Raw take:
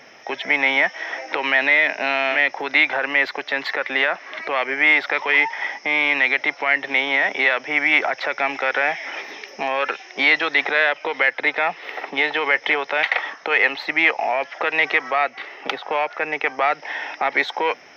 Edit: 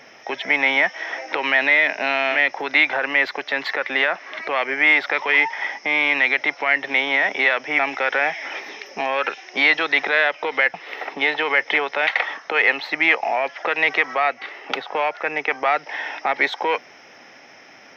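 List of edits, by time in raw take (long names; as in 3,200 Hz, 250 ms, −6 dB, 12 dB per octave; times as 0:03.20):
0:07.79–0:08.41: remove
0:11.36–0:11.70: remove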